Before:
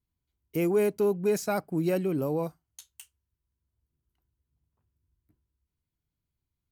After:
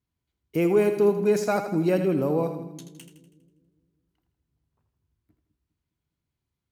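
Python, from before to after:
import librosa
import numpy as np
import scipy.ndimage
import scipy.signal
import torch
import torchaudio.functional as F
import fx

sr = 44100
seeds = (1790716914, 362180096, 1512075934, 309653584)

y = fx.highpass(x, sr, hz=100.0, slope=6)
y = fx.high_shelf(y, sr, hz=7400.0, db=-11.0)
y = fx.echo_split(y, sr, split_hz=310.0, low_ms=204, high_ms=81, feedback_pct=52, wet_db=-9.0)
y = y * librosa.db_to_amplitude(4.5)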